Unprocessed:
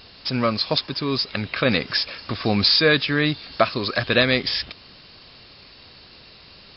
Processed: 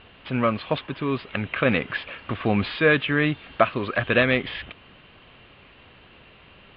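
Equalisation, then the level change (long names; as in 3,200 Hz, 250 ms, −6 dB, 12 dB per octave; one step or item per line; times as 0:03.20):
elliptic low-pass filter 3,100 Hz, stop band 50 dB
0.0 dB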